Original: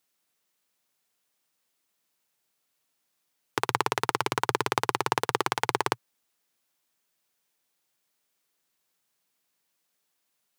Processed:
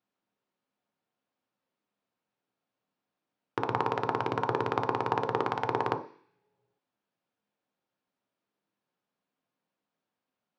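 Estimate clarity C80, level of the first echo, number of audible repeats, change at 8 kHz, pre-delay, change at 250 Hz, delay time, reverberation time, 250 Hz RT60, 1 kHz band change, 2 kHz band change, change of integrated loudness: 16.5 dB, no echo, no echo, under -20 dB, 3 ms, +1.0 dB, no echo, 0.50 s, 0.50 s, -2.0 dB, -6.5 dB, -2.5 dB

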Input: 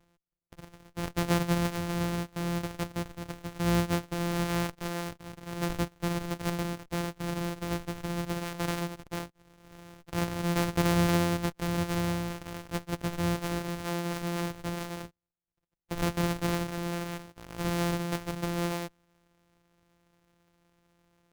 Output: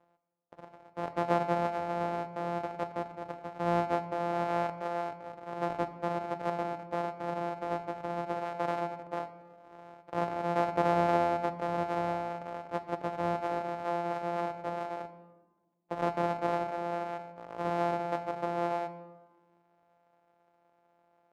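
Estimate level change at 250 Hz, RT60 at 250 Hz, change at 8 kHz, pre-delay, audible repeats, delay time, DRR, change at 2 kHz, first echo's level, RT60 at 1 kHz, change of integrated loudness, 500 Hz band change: -7.0 dB, 1.9 s, under -15 dB, 3 ms, no echo, no echo, 10.0 dB, -4.5 dB, no echo, 1.2 s, -1.5 dB, +3.0 dB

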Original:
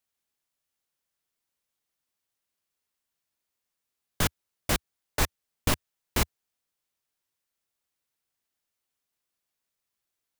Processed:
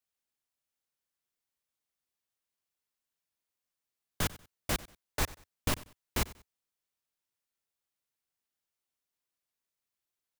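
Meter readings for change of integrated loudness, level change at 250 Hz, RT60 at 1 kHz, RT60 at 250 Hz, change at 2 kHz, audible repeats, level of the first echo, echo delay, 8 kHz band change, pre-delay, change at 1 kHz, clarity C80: -5.5 dB, -5.5 dB, no reverb, no reverb, -5.5 dB, 2, -19.0 dB, 94 ms, -5.5 dB, no reverb, -5.5 dB, no reverb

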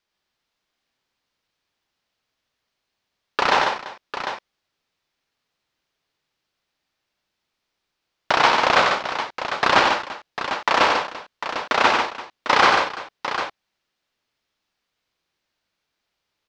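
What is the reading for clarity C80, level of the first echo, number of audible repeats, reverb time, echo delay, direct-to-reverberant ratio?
no reverb, -4.5 dB, 4, no reverb, 93 ms, no reverb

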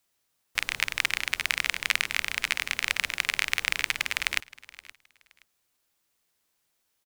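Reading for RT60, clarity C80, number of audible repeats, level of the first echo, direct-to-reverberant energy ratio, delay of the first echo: no reverb, no reverb, 2, -20.0 dB, no reverb, 522 ms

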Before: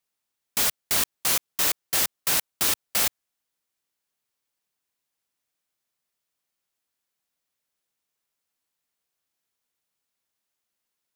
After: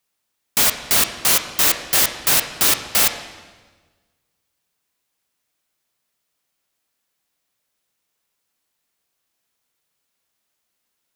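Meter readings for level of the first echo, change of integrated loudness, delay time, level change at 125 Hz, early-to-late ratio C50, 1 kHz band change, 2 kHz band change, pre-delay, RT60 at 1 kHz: no echo, +7.0 dB, no echo, +8.0 dB, 9.0 dB, +8.0 dB, +8.0 dB, 8 ms, 1.3 s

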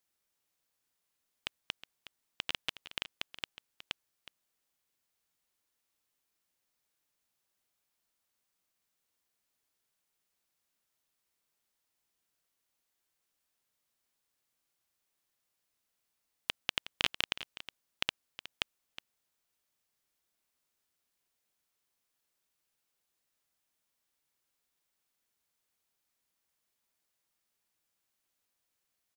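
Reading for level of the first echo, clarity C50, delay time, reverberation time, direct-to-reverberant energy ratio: -14.0 dB, no reverb, 366 ms, no reverb, no reverb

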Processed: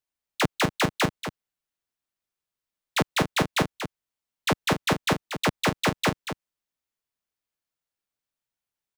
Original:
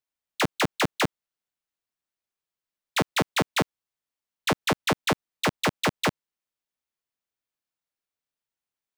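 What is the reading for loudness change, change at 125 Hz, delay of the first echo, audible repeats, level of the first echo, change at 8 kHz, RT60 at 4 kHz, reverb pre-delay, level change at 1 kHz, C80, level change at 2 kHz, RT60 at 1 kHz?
+0.5 dB, +2.5 dB, 235 ms, 1, -9.5 dB, +0.5 dB, no reverb, no reverb, +0.5 dB, no reverb, +0.5 dB, no reverb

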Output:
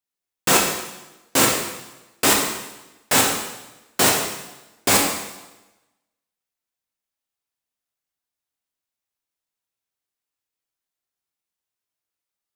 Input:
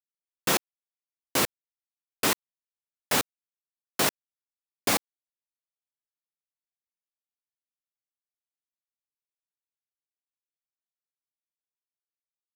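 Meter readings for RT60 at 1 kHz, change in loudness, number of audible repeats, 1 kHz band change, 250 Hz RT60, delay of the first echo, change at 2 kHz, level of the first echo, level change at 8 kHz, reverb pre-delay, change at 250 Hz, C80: 1.0 s, +8.5 dB, no echo, +9.0 dB, 1.1 s, no echo, +8.5 dB, no echo, +11.5 dB, 6 ms, +9.0 dB, 5.5 dB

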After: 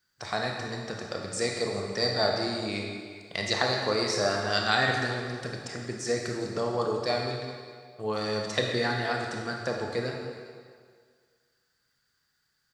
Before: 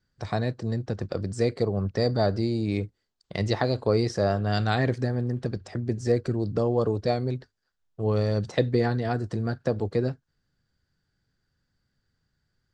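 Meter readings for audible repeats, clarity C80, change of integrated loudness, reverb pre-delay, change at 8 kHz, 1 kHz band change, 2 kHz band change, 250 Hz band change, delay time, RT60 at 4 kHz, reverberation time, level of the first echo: 1, 3.5 dB, -2.5 dB, 23 ms, +10.0 dB, +1.5 dB, +6.5 dB, -6.5 dB, 405 ms, 1.6 s, 1.9 s, -19.0 dB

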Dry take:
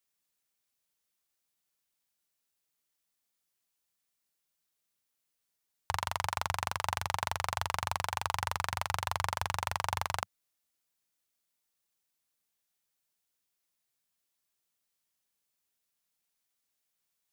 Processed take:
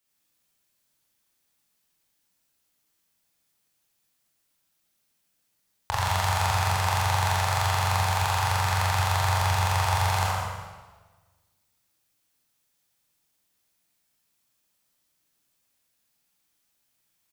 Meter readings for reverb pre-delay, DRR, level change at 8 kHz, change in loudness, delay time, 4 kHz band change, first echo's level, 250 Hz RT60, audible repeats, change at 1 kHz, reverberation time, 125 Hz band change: 19 ms, -5.5 dB, +9.0 dB, +9.5 dB, 117 ms, +9.0 dB, -4.0 dB, 1.5 s, 1, +8.5 dB, 1.3 s, +16.5 dB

